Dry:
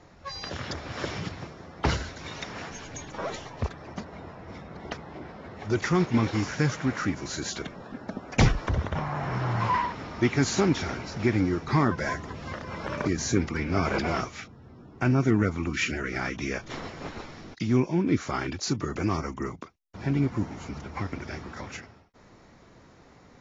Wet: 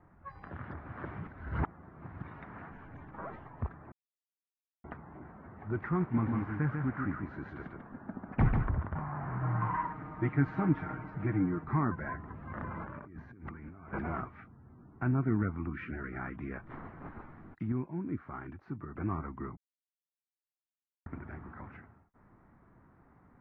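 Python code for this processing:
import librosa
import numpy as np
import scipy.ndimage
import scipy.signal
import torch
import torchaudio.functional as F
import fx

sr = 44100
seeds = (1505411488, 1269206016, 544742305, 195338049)

y = fx.echo_single(x, sr, ms=144, db=-4.5, at=(6.16, 8.82), fade=0.02)
y = fx.comb(y, sr, ms=6.5, depth=0.74, at=(9.42, 11.64))
y = fx.over_compress(y, sr, threshold_db=-38.0, ratio=-1.0, at=(12.5, 13.93))
y = fx.edit(y, sr, fx.reverse_span(start_s=1.27, length_s=0.95),
    fx.silence(start_s=3.92, length_s=0.92),
    fx.clip_gain(start_s=17.72, length_s=1.25, db=-5.0),
    fx.silence(start_s=19.57, length_s=1.49), tone=tone)
y = scipy.signal.sosfilt(scipy.signal.butter(4, 1600.0, 'lowpass', fs=sr, output='sos'), y)
y = fx.peak_eq(y, sr, hz=510.0, db=-9.0, octaves=0.92)
y = F.gain(torch.from_numpy(y), -5.5).numpy()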